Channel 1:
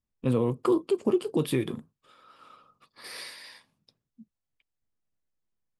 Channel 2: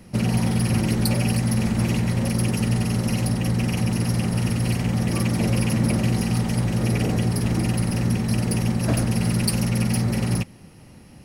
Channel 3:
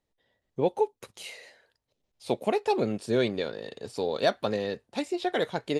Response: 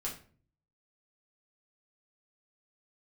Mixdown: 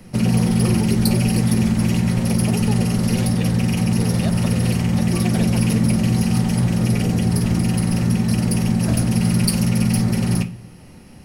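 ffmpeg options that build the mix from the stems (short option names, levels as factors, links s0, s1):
-filter_complex "[0:a]volume=1.12[s0];[1:a]acrossover=split=240|3000[s1][s2][s3];[s2]acompressor=threshold=0.0316:ratio=6[s4];[s1][s4][s3]amix=inputs=3:normalize=0,volume=1.06,asplit=2[s5][s6];[s6]volume=0.501[s7];[2:a]volume=0.75[s8];[s0][s8]amix=inputs=2:normalize=0,acompressor=threshold=0.0447:ratio=6,volume=1[s9];[3:a]atrim=start_sample=2205[s10];[s7][s10]afir=irnorm=-1:irlink=0[s11];[s5][s9][s11]amix=inputs=3:normalize=0"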